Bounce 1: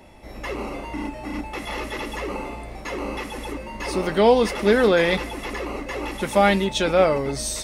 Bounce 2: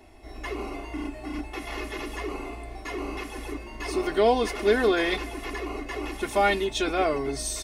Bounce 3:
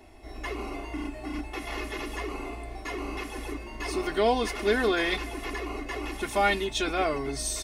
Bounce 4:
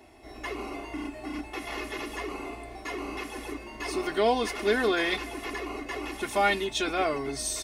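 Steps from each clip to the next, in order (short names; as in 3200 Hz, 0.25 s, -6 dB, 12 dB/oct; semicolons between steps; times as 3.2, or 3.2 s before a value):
comb 2.8 ms, depth 80%; gain -6 dB
dynamic EQ 460 Hz, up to -4 dB, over -35 dBFS, Q 0.87
HPF 120 Hz 6 dB/oct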